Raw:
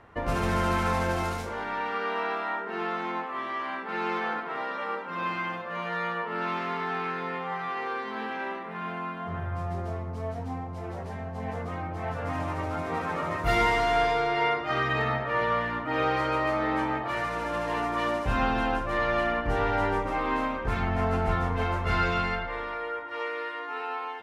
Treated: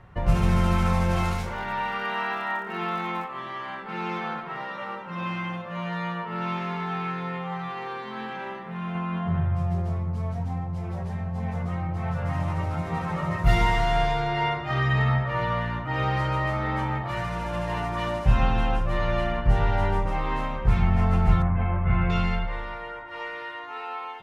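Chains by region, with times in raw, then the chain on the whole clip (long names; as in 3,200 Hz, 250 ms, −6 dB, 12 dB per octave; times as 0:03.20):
0:01.11–0:03.26: parametric band 2,100 Hz +4 dB 2.7 octaves + surface crackle 130 per second −42 dBFS
0:08.95–0:09.55: high-shelf EQ 8,600 Hz −11.5 dB + envelope flattener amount 70%
0:21.42–0:22.10: low-pass filter 2,300 Hz 24 dB per octave + notch comb filter 460 Hz
whole clip: low shelf with overshoot 190 Hz +11 dB, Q 1.5; comb filter 5.4 ms, depth 43%; level −1 dB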